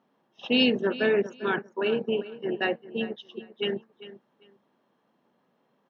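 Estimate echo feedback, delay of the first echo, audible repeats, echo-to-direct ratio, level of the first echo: 20%, 397 ms, 2, −16.0 dB, −16.0 dB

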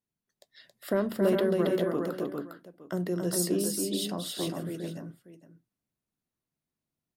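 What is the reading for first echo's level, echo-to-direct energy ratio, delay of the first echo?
−4.0 dB, −1.0 dB, 274 ms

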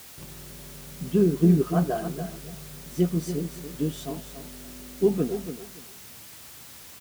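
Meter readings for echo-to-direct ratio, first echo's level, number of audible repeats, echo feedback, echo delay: −10.0 dB, −10.0 dB, 2, 19%, 284 ms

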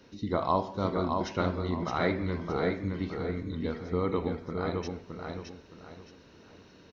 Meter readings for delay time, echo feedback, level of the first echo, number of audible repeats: 617 ms, 31%, −4.5 dB, 3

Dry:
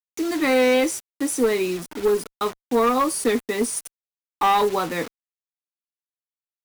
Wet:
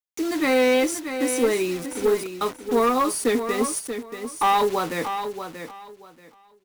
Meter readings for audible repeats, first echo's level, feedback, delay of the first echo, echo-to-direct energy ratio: 2, −9.0 dB, 21%, 633 ms, −9.0 dB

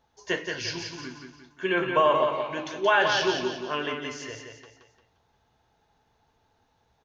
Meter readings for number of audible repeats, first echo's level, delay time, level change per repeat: 4, −5.5 dB, 175 ms, −7.5 dB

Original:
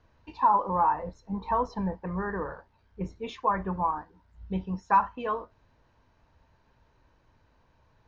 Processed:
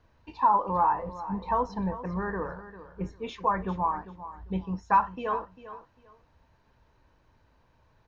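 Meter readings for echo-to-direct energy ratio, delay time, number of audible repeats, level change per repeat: −14.0 dB, 398 ms, 2, −13.0 dB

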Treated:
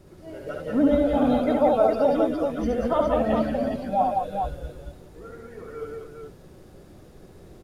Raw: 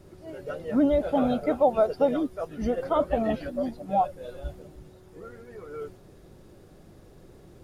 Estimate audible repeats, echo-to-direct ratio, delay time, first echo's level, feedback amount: 3, 1.0 dB, 69 ms, −3.5 dB, repeats not evenly spaced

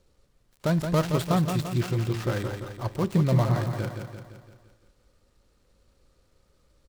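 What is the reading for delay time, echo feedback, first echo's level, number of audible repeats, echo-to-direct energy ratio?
171 ms, 54%, −6.5 dB, 6, −5.0 dB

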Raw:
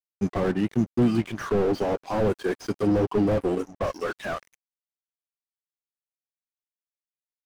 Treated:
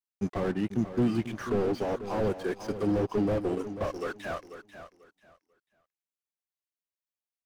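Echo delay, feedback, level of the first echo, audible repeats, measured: 491 ms, 23%, −11.5 dB, 2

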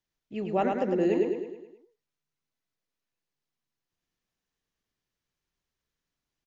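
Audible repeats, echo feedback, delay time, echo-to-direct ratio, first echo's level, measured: 6, 50%, 106 ms, −3.0 dB, −4.0 dB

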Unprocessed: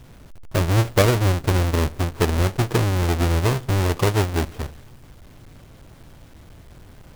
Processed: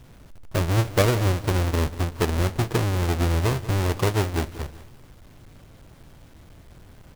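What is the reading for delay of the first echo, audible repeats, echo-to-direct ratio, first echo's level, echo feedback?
190 ms, 3, −15.5 dB, −16.0 dB, 38%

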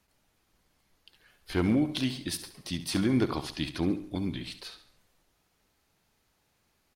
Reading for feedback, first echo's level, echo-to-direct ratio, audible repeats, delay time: 44%, −12.5 dB, −11.5 dB, 4, 69 ms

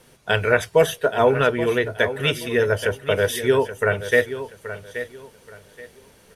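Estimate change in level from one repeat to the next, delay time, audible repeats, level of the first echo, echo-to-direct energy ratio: −11.5 dB, 827 ms, 2, −12.0 dB, −11.5 dB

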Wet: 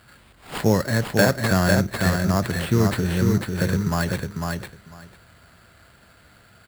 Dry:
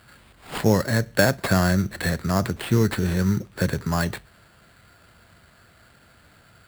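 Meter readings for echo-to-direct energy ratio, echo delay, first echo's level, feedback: −4.0 dB, 499 ms, −4.0 dB, 15%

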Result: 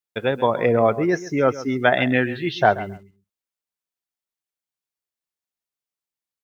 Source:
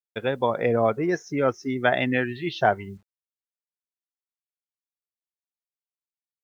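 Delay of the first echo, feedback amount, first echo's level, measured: 134 ms, 17%, −15.5 dB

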